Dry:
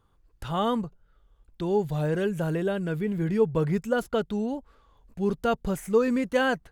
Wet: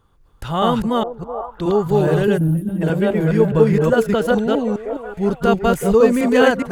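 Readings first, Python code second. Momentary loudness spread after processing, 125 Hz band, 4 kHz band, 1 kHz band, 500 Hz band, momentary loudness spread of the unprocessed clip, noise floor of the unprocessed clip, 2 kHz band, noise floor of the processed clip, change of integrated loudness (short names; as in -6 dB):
11 LU, +10.5 dB, +9.5 dB, +10.0 dB, +10.5 dB, 8 LU, -64 dBFS, +8.5 dB, -53 dBFS, +10.0 dB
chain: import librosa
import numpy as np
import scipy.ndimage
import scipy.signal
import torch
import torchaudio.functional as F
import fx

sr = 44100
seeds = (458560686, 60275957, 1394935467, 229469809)

y = fx.reverse_delay(x, sr, ms=207, wet_db=0.0)
y = fx.echo_stepped(y, sr, ms=377, hz=500.0, octaves=0.7, feedback_pct=70, wet_db=-6.0)
y = fx.spec_box(y, sr, start_s=2.38, length_s=0.43, low_hz=330.0, high_hz=9000.0, gain_db=-22)
y = F.gain(torch.from_numpy(y), 7.0).numpy()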